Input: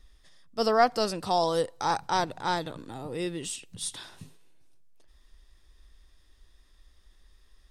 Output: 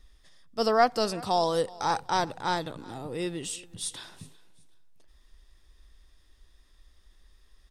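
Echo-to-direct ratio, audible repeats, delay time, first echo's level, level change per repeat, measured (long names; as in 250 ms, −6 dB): −21.5 dB, 2, 373 ms, −22.0 dB, −10.5 dB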